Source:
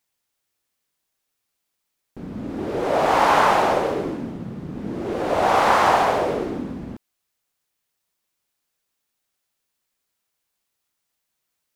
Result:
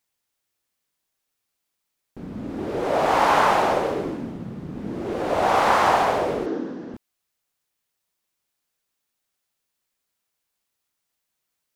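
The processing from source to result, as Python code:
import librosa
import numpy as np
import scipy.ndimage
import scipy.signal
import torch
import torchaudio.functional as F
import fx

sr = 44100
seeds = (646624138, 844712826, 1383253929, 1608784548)

y = fx.cabinet(x, sr, low_hz=240.0, low_slope=12, high_hz=6300.0, hz=(320.0, 470.0, 1600.0, 2300.0, 5800.0), db=(6, 7, 6, -6, 4), at=(6.46, 6.94))
y = y * librosa.db_to_amplitude(-1.5)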